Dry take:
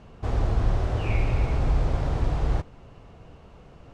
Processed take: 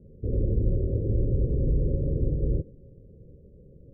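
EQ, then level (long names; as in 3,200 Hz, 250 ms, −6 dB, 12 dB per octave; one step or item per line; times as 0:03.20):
dynamic equaliser 310 Hz, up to +5 dB, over −42 dBFS, Q 0.75
Chebyshev low-pass with heavy ripple 560 Hz, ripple 3 dB
0.0 dB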